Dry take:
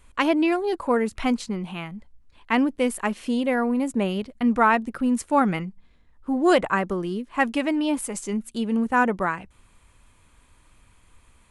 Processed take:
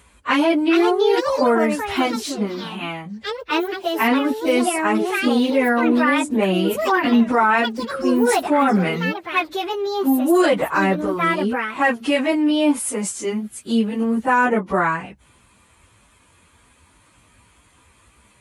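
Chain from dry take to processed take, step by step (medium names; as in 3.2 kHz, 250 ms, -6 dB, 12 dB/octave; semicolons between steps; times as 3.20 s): high-pass 45 Hz 24 dB/octave; bass shelf 62 Hz -9.5 dB; plain phase-vocoder stretch 1.6×; ever faster or slower copies 500 ms, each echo +5 st, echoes 2, each echo -6 dB; loudness maximiser +16 dB; trim -7 dB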